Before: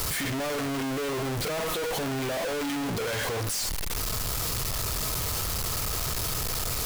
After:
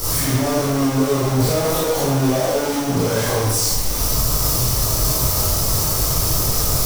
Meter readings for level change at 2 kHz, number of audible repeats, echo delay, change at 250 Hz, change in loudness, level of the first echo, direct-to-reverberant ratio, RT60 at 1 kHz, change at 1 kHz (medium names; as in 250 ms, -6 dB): +3.5 dB, no echo, no echo, +12.0 dB, +11.0 dB, no echo, -10.5 dB, 1.0 s, +9.5 dB